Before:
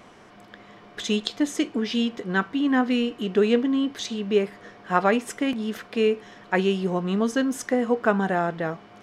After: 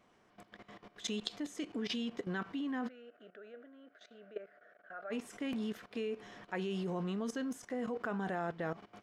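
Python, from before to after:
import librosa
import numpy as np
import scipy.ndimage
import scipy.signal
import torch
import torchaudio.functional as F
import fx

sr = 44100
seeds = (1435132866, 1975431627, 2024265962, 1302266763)

y = fx.level_steps(x, sr, step_db=16)
y = fx.double_bandpass(y, sr, hz=960.0, octaves=1.2, at=(2.87, 5.1), fade=0.02)
y = F.gain(torch.from_numpy(y), -4.5).numpy()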